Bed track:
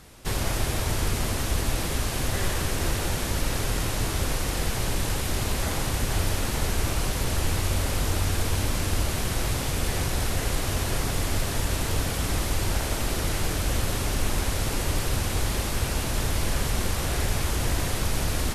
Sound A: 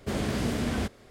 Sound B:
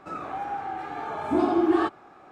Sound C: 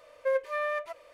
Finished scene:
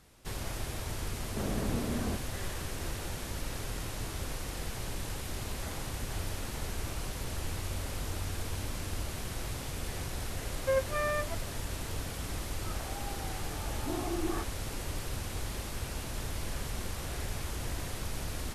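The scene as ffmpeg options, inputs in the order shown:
ffmpeg -i bed.wav -i cue0.wav -i cue1.wav -i cue2.wav -filter_complex "[0:a]volume=-11dB[link_01];[1:a]lowpass=1400,atrim=end=1.1,asetpts=PTS-STARTPTS,volume=-5dB,afade=type=in:duration=0.004:curve=hsin,afade=type=out:start_time=1.096:duration=0.004:curve=hsin,adelay=1290[link_02];[3:a]atrim=end=1.13,asetpts=PTS-STARTPTS,volume=-1.5dB,afade=type=in:duration=0.004:curve=hsin,afade=type=out:start_time=1.126:duration=0.004:curve=hsin,adelay=459522S[link_03];[2:a]atrim=end=2.31,asetpts=PTS-STARTPTS,volume=-14dB,afade=type=in:duration=0.004:curve=hsin,afade=type=out:start_time=2.306:duration=0.004:curve=hsin,adelay=12550[link_04];[link_01][link_02][link_03][link_04]amix=inputs=4:normalize=0" out.wav

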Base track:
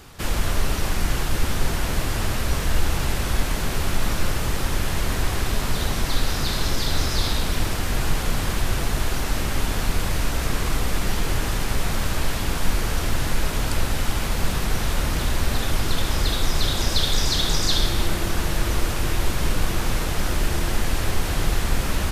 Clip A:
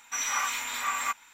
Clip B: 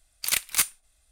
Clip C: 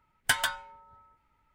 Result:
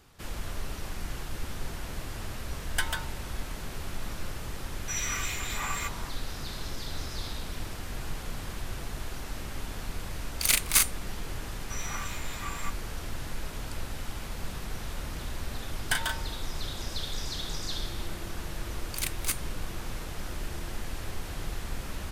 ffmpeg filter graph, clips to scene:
ffmpeg -i bed.wav -i cue0.wav -i cue1.wav -i cue2.wav -filter_complex "[3:a]asplit=2[link_01][link_02];[1:a]asplit=2[link_03][link_04];[2:a]asplit=2[link_05][link_06];[0:a]volume=-13.5dB[link_07];[link_03]acrossover=split=1300[link_08][link_09];[link_08]adelay=510[link_10];[link_10][link_09]amix=inputs=2:normalize=0[link_11];[link_05]asplit=2[link_12][link_13];[link_13]adelay=39,volume=-3dB[link_14];[link_12][link_14]amix=inputs=2:normalize=0[link_15];[link_02]asplit=2[link_16][link_17];[link_17]adelay=36,volume=-5dB[link_18];[link_16][link_18]amix=inputs=2:normalize=0[link_19];[link_01]atrim=end=1.54,asetpts=PTS-STARTPTS,volume=-5dB,afade=type=in:duration=0.004:curve=hsin,afade=type=out:start_time=1.536:duration=0.004:curve=hsin,adelay=2490[link_20];[link_11]atrim=end=1.33,asetpts=PTS-STARTPTS,volume=-2dB,afade=type=in:duration=0.004:curve=hsin,afade=type=out:start_time=1.326:duration=0.004:curve=hsin,adelay=4760[link_21];[link_15]atrim=end=1.11,asetpts=PTS-STARTPTS,volume=-0.5dB,afade=type=in:duration=0.004:curve=hsin,afade=type=out:start_time=1.106:duration=0.004:curve=hsin,adelay=10170[link_22];[link_04]atrim=end=1.33,asetpts=PTS-STARTPTS,volume=-9.5dB,afade=type=in:duration=0.004:curve=hsin,afade=type=out:start_time=1.326:duration=0.004:curve=hsin,adelay=11580[link_23];[link_19]atrim=end=1.54,asetpts=PTS-STARTPTS,volume=-4dB,afade=type=in:duration=0.004:curve=hsin,afade=type=out:start_time=1.536:duration=0.004:curve=hsin,adelay=15620[link_24];[link_06]atrim=end=1.11,asetpts=PTS-STARTPTS,volume=-8.5dB,afade=type=in:duration=0.004:curve=hsin,afade=type=out:start_time=1.106:duration=0.004:curve=hsin,adelay=18700[link_25];[link_07][link_20][link_21][link_22][link_23][link_24][link_25]amix=inputs=7:normalize=0" out.wav

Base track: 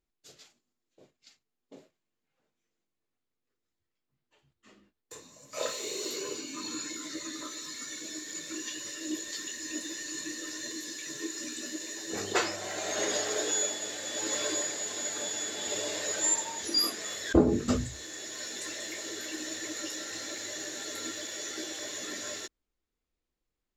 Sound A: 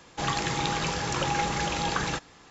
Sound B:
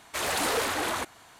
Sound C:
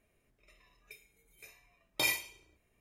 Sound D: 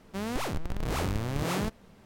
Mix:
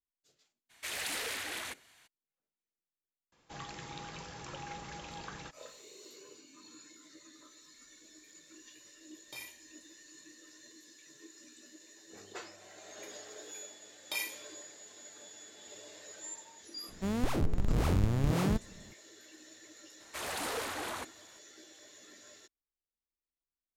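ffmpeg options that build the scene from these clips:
ffmpeg -i bed.wav -i cue0.wav -i cue1.wav -i cue2.wav -i cue3.wav -filter_complex "[2:a]asplit=2[link_01][link_02];[3:a]asplit=2[link_03][link_04];[0:a]volume=-17.5dB[link_05];[link_01]highshelf=frequency=1500:width_type=q:width=1.5:gain=7.5[link_06];[link_03]bandreject=frequency=51.57:width_type=h:width=4,bandreject=frequency=103.14:width_type=h:width=4,bandreject=frequency=154.71:width_type=h:width=4,bandreject=frequency=206.28:width_type=h:width=4,bandreject=frequency=257.85:width_type=h:width=4,bandreject=frequency=309.42:width_type=h:width=4,bandreject=frequency=360.99:width_type=h:width=4,bandreject=frequency=412.56:width_type=h:width=4,bandreject=frequency=464.13:width_type=h:width=4,bandreject=frequency=515.7:width_type=h:width=4,bandreject=frequency=567.27:width_type=h:width=4,bandreject=frequency=618.84:width_type=h:width=4,bandreject=frequency=670.41:width_type=h:width=4,bandreject=frequency=721.98:width_type=h:width=4,bandreject=frequency=773.55:width_type=h:width=4,bandreject=frequency=825.12:width_type=h:width=4,bandreject=frequency=876.69:width_type=h:width=4,bandreject=frequency=928.26:width_type=h:width=4,bandreject=frequency=979.83:width_type=h:width=4,bandreject=frequency=1031.4:width_type=h:width=4,bandreject=frequency=1082.97:width_type=h:width=4,bandreject=frequency=1134.54:width_type=h:width=4,bandreject=frequency=1186.11:width_type=h:width=4,bandreject=frequency=1237.68:width_type=h:width=4,bandreject=frequency=1289.25:width_type=h:width=4,bandreject=frequency=1340.82:width_type=h:width=4,bandreject=frequency=1392.39:width_type=h:width=4,bandreject=frequency=1443.96:width_type=h:width=4,bandreject=frequency=1495.53:width_type=h:width=4,bandreject=frequency=1547.1:width_type=h:width=4,bandreject=frequency=1598.67:width_type=h:width=4,bandreject=frequency=1650.24:width_type=h:width=4,bandreject=frequency=1701.81:width_type=h:width=4,bandreject=frequency=1753.38:width_type=h:width=4,bandreject=frequency=1804.95:width_type=h:width=4,bandreject=frequency=1856.52:width_type=h:width=4[link_07];[link_04]highpass=frequency=680:poles=1[link_08];[4:a]lowshelf=frequency=370:gain=9[link_09];[link_06]atrim=end=1.39,asetpts=PTS-STARTPTS,volume=-15dB,afade=type=in:duration=0.02,afade=type=out:start_time=1.37:duration=0.02,adelay=690[link_10];[1:a]atrim=end=2.5,asetpts=PTS-STARTPTS,volume=-17dB,afade=type=in:duration=0.004:curve=hsin,afade=type=out:start_time=2.496:duration=0.004:curve=hsin,adelay=3320[link_11];[link_07]atrim=end=2.8,asetpts=PTS-STARTPTS,volume=-16dB,afade=type=in:duration=0.004:curve=hsin,afade=type=out:start_time=2.796:duration=0.004:curve=hsin,adelay=7330[link_12];[link_08]atrim=end=2.8,asetpts=PTS-STARTPTS,volume=-5.5dB,afade=type=in:duration=0.004:curve=hsin,afade=type=out:start_time=2.796:duration=0.004:curve=hsin,adelay=12120[link_13];[link_09]atrim=end=2.05,asetpts=PTS-STARTPTS,volume=-5dB,afade=type=in:duration=0.004:curve=hsin,afade=type=out:start_time=2.046:duration=0.004:curve=hsin,adelay=16880[link_14];[link_02]atrim=end=1.39,asetpts=PTS-STARTPTS,volume=-9.5dB,afade=type=in:duration=0.004:curve=hsin,afade=type=out:start_time=1.386:duration=0.004:curve=hsin,adelay=20000[link_15];[link_05][link_10][link_11][link_12][link_13][link_14][link_15]amix=inputs=7:normalize=0" out.wav

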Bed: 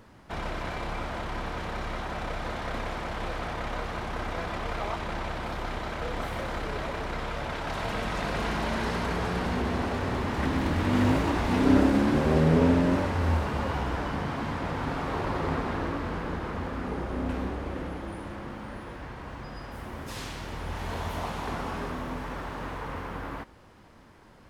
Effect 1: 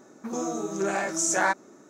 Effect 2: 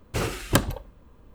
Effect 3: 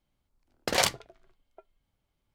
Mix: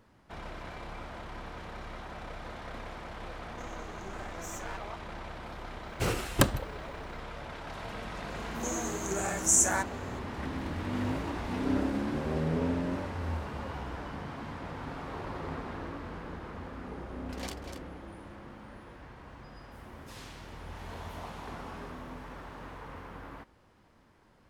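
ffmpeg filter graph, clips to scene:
ffmpeg -i bed.wav -i cue0.wav -i cue1.wav -i cue2.wav -filter_complex "[1:a]asplit=2[link_01][link_02];[0:a]volume=-9dB[link_03];[link_01]aeval=exprs='if(lt(val(0),0),0.251*val(0),val(0))':channel_layout=same[link_04];[link_02]aexciter=amount=5.7:drive=4.9:freq=6500[link_05];[3:a]aecho=1:1:245:0.398[link_06];[link_04]atrim=end=1.89,asetpts=PTS-STARTPTS,volume=-15.5dB,afade=type=in:duration=0.004:curve=hsin,afade=type=out:start_time=1.886:duration=0.004:curve=hsin,adelay=143325S[link_07];[2:a]atrim=end=1.34,asetpts=PTS-STARTPTS,volume=-3dB,afade=type=in:duration=0.004:curve=hsin,afade=type=out:start_time=1.336:duration=0.004:curve=hsin,adelay=5860[link_08];[link_05]atrim=end=1.89,asetpts=PTS-STARTPTS,volume=-7.5dB,afade=type=in:duration=0.004:curve=hsin,afade=type=out:start_time=1.886:duration=0.004:curve=hsin,adelay=8300[link_09];[link_06]atrim=end=2.34,asetpts=PTS-STARTPTS,volume=-18dB,afade=type=in:duration=0.004:curve=hsin,afade=type=out:start_time=2.336:duration=0.004:curve=hsin,adelay=16650[link_10];[link_03][link_07][link_08][link_09][link_10]amix=inputs=5:normalize=0" out.wav

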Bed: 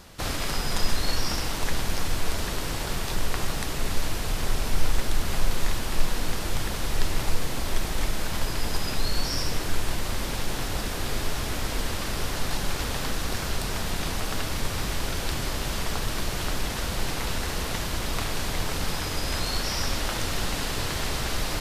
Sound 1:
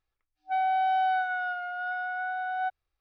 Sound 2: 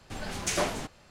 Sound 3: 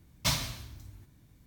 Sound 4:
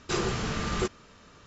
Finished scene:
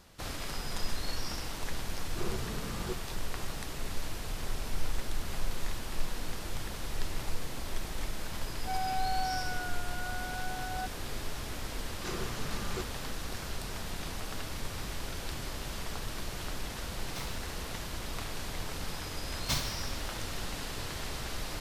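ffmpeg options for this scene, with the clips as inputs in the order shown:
ffmpeg -i bed.wav -i cue0.wav -i cue1.wav -i cue2.wav -i cue3.wav -filter_complex "[4:a]asplit=2[link_01][link_02];[3:a]asplit=2[link_03][link_04];[0:a]volume=-9.5dB[link_05];[link_01]tiltshelf=frequency=830:gain=5,atrim=end=1.46,asetpts=PTS-STARTPTS,volume=-12.5dB,afade=type=in:duration=0.004:curve=hsin,afade=type=out:start_time=1.456:duration=0.004:curve=hsin,adelay=2070[link_06];[1:a]atrim=end=3,asetpts=PTS-STARTPTS,volume=-8.5dB,afade=type=in:duration=0.004:curve=hsin,afade=type=out:start_time=2.996:duration=0.004:curve=hsin,adelay=8170[link_07];[link_02]atrim=end=1.46,asetpts=PTS-STARTPTS,volume=-10.5dB,afade=type=in:duration=0.004:curve=hsin,afade=type=out:start_time=1.456:duration=0.004:curve=hsin,adelay=11950[link_08];[link_03]atrim=end=1.46,asetpts=PTS-STARTPTS,volume=-16.5dB,afade=type=in:duration=0.004:curve=hsin,afade=type=out:start_time=1.456:duration=0.004:curve=hsin,adelay=16900[link_09];[link_04]atrim=end=1.46,asetpts=PTS-STARTPTS,volume=-4dB,afade=type=in:duration=0.004:curve=hsin,afade=type=out:start_time=1.456:duration=0.004:curve=hsin,adelay=848484S[link_10];[link_05][link_06][link_07][link_08][link_09][link_10]amix=inputs=6:normalize=0" out.wav

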